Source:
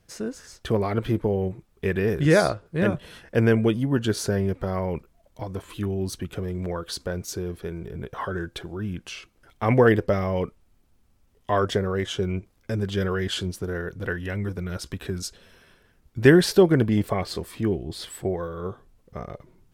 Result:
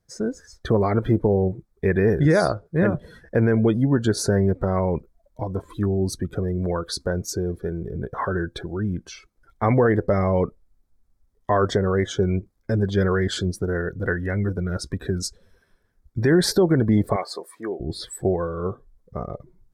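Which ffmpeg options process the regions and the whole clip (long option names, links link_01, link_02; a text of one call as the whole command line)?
ffmpeg -i in.wav -filter_complex "[0:a]asettb=1/sr,asplit=3[link_01][link_02][link_03];[link_01]atrim=end=17.164[link_04];[link_02]atrim=start=17.16:end=17.8,asetpts=PTS-STARTPTS,afade=type=in:duration=0.004:curve=qsin,afade=type=out:start_time=0.636:duration=0.004:curve=qsin,highpass=570,equalizer=frequency=3500:width=1.1:gain=-4.5[link_05];[link_03]atrim=start=17.796[link_06];[link_04][link_05]acrossfade=duration=0.004:curve1=hsin:curve2=qsin[link_07];[link_07][link_06]acrossfade=duration=0.004:curve1=qsin:curve2=hsin,alimiter=limit=-14dB:level=0:latency=1:release=90,equalizer=frequency=2800:width_type=o:width=0.4:gain=-13.5,afftdn=noise_reduction=15:noise_floor=-43,volume=5dB" out.wav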